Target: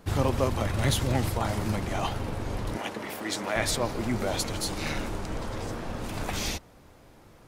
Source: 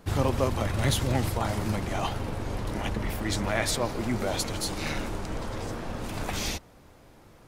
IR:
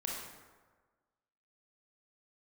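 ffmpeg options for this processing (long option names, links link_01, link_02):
-filter_complex "[0:a]asettb=1/sr,asplit=3[link_01][link_02][link_03];[link_01]atrim=end=2.774[link_04];[link_02]atrim=start=2.77:end=3.56,asetpts=PTS-STARTPTS,afade=type=in:duration=0.004:curve=qsin,afade=type=out:start_time=0.786:duration=0.004:curve=qsin,highpass=280[link_05];[link_03]atrim=start=3.556[link_06];[link_04][link_05]acrossfade=duration=0.004:curve1=hsin:curve2=qsin[link_07];[link_07][link_06]acrossfade=duration=0.004:curve1=qsin:curve2=hsin"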